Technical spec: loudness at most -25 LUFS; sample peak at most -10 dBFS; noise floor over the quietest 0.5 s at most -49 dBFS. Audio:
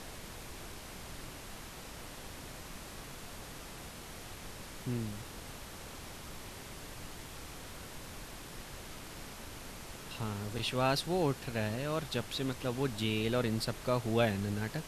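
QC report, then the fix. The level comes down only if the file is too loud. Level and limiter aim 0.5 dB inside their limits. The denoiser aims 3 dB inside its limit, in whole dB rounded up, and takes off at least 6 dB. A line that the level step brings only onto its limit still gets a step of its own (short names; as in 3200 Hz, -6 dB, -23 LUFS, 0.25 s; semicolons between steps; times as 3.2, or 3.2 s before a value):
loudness -38.0 LUFS: OK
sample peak -15.0 dBFS: OK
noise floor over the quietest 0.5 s -47 dBFS: fail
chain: denoiser 6 dB, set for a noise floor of -47 dBFS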